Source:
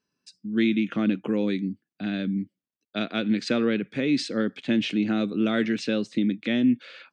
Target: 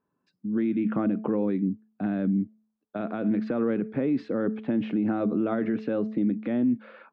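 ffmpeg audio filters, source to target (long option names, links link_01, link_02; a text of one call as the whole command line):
ffmpeg -i in.wav -af "bandreject=frequency=217.3:width_type=h:width=4,bandreject=frequency=434.6:width_type=h:width=4,bandreject=frequency=651.9:width_type=h:width=4,alimiter=limit=-21dB:level=0:latency=1:release=46,lowpass=frequency=1000:width_type=q:width=1.6,volume=3dB" out.wav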